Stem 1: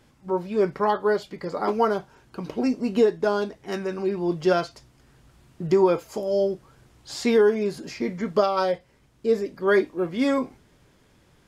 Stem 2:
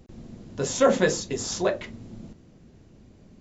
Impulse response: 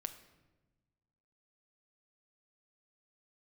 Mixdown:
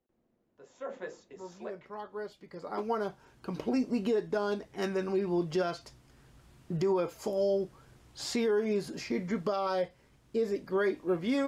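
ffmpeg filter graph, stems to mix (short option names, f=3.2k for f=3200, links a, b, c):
-filter_complex "[0:a]adelay=1100,volume=-3dB[a];[1:a]acrossover=split=310 2400:gain=0.178 1 0.224[b][c][d];[b][c][d]amix=inputs=3:normalize=0,volume=-17dB,afade=t=in:st=0.69:d=0.34:silence=0.446684,asplit=2[e][f];[f]apad=whole_len=554735[g];[a][g]sidechaincompress=threshold=-56dB:ratio=6:attack=5.3:release=1260[h];[h][e]amix=inputs=2:normalize=0,alimiter=limit=-21.5dB:level=0:latency=1:release=129"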